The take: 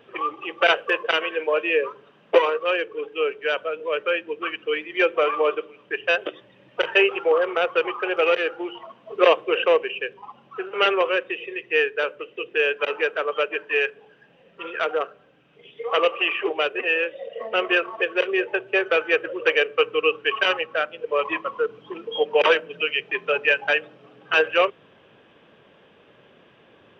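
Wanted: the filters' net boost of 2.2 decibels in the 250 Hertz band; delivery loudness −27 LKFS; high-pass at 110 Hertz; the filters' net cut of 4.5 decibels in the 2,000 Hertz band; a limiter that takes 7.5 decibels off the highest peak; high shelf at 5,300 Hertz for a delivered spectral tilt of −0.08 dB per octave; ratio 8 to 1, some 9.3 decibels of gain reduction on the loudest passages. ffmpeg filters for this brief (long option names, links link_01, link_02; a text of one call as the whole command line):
ffmpeg -i in.wav -af "highpass=110,equalizer=frequency=250:width_type=o:gain=4.5,equalizer=frequency=2000:width_type=o:gain=-5.5,highshelf=frequency=5300:gain=-4.5,acompressor=threshold=-20dB:ratio=8,volume=1.5dB,alimiter=limit=-15.5dB:level=0:latency=1" out.wav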